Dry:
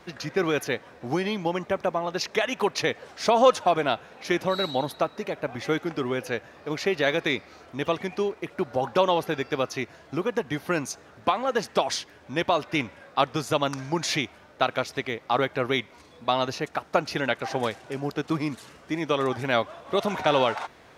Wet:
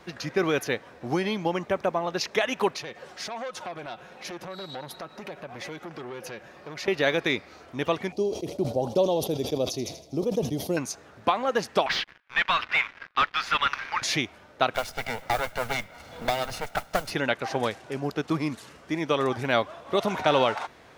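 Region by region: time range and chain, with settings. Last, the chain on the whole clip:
2.74–6.88 s: comb 5.5 ms, depth 41% + compression 5:1, threshold -31 dBFS + transformer saturation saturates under 1.6 kHz
8.12–10.77 s: FFT filter 640 Hz 0 dB, 1.6 kHz -27 dB, 4.4 kHz -1 dB + feedback echo behind a high-pass 80 ms, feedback 65%, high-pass 2.7 kHz, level -8 dB + decay stretcher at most 100 dB/s
11.86–14.02 s: high-pass 1.4 kHz 24 dB/octave + waveshaping leveller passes 5 + distance through air 350 m
14.74–17.11 s: comb filter that takes the minimum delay 1.4 ms + modulation noise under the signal 19 dB + three bands compressed up and down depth 70%
whole clip: none

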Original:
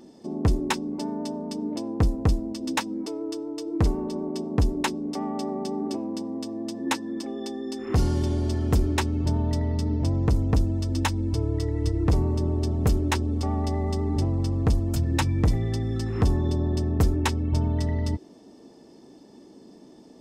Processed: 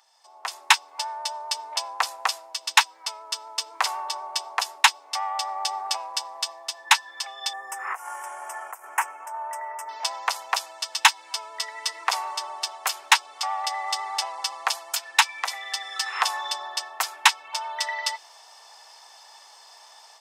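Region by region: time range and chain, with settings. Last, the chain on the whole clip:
7.53–9.89 s: compressor with a negative ratio -27 dBFS + Butterworth band-stop 4.1 kHz, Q 0.6
whole clip: steep high-pass 830 Hz 36 dB/octave; dynamic bell 2.9 kHz, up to +4 dB, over -51 dBFS, Q 0.99; level rider gain up to 14 dB

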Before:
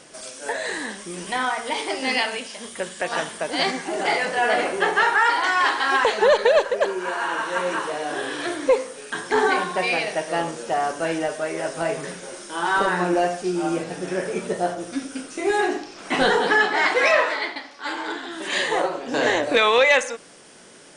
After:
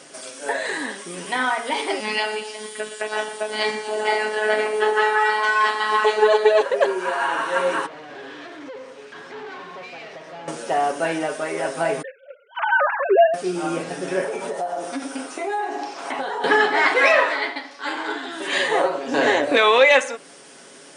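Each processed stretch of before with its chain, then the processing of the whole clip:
2.00–6.61 s: robot voice 214 Hz + feedback delay 119 ms, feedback 55%, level -12.5 dB + tape noise reduction on one side only encoder only
7.86–10.48 s: compression 2:1, threshold -31 dBFS + valve stage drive 36 dB, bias 0.7 + distance through air 150 m
12.02–13.34 s: formants replaced by sine waves + gate -35 dBFS, range -14 dB
14.24–16.44 s: peaking EQ 830 Hz +10.5 dB 1.1 oct + compression 12:1, threshold -25 dBFS + high-pass 220 Hz 6 dB/octave
whole clip: comb 7.3 ms, depth 43%; dynamic bell 6.2 kHz, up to -5 dB, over -42 dBFS, Q 0.97; high-pass 180 Hz 12 dB/octave; trim +2 dB

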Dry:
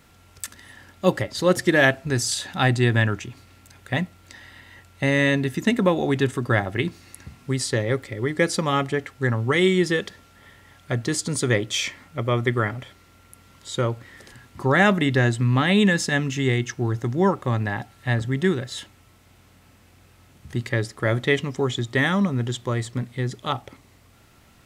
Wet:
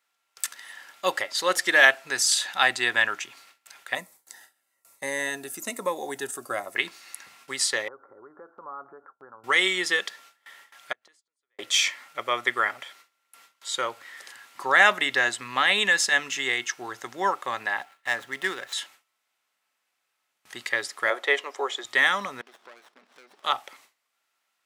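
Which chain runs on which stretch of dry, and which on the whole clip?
3.95–6.76 s: FFT filter 710 Hz 0 dB, 3.2 kHz -13 dB, 9.4 kHz +7 dB + Shepard-style phaser falling 1.1 Hz
7.88–9.44 s: expander -41 dBFS + compression, threshold -32 dBFS + rippled Chebyshev low-pass 1.5 kHz, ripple 3 dB
10.92–11.59 s: tone controls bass -10 dB, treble -6 dB + inverted gate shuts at -23 dBFS, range -34 dB
17.80–18.73 s: median filter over 9 samples + bass shelf 140 Hz -5 dB
21.10–21.85 s: high-pass 390 Hz 24 dB/octave + tilt shelf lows +7 dB, about 1.4 kHz
22.41–23.44 s: compression 4:1, threshold -39 dBFS + brick-wall FIR band-pass 160–5700 Hz + sliding maximum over 17 samples
whole clip: gate with hold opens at -39 dBFS; high-pass 910 Hz 12 dB/octave; trim +3.5 dB

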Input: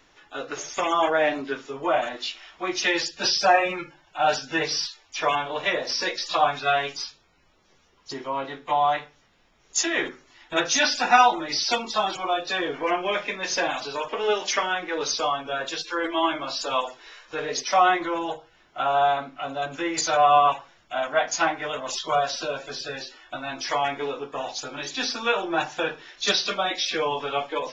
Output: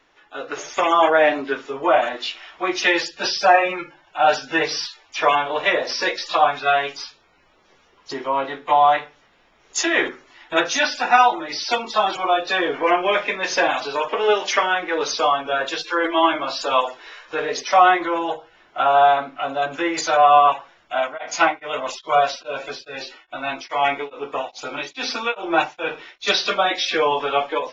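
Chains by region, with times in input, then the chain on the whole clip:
20.98–26.34 s: peaking EQ 2.2 kHz +4.5 dB 0.61 oct + band-stop 1.7 kHz, Q 7.2 + tremolo of two beating tones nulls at 2.4 Hz
whole clip: tone controls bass -8 dB, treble -6 dB; level rider gain up to 7.5 dB; treble shelf 5.9 kHz -4 dB

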